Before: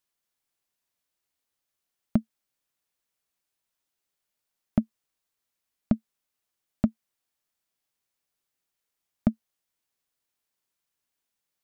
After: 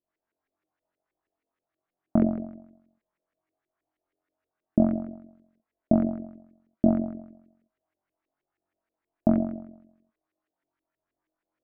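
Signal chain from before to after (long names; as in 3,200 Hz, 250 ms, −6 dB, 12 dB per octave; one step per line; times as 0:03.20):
flutter between parallel walls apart 3.8 metres, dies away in 0.84 s
pitch vibrato 1.2 Hz 11 cents
hollow resonant body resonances 320/640 Hz, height 11 dB, ringing for 45 ms
auto-filter low-pass saw up 6.3 Hz 370–2,200 Hz
level −4 dB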